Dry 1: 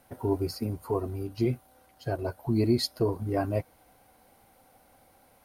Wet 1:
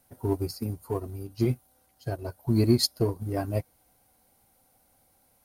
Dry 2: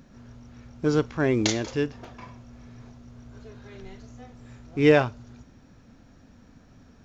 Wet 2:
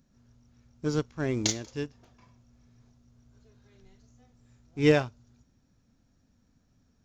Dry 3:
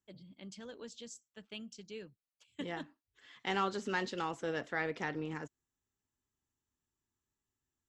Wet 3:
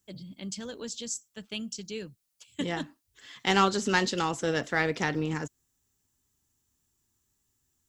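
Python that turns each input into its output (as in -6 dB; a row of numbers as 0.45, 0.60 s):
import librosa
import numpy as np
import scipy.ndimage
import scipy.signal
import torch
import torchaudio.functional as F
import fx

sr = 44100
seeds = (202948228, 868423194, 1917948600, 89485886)

p1 = fx.bass_treble(x, sr, bass_db=5, treble_db=10)
p2 = np.sign(p1) * np.maximum(np.abs(p1) - 10.0 ** (-29.0 / 20.0), 0.0)
p3 = p1 + (p2 * 10.0 ** (-9.0 / 20.0))
p4 = fx.upward_expand(p3, sr, threshold_db=-33.0, expansion=1.5)
y = p4 * 10.0 ** (-9 / 20.0) / np.max(np.abs(p4))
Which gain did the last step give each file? -0.5, -6.5, +9.5 dB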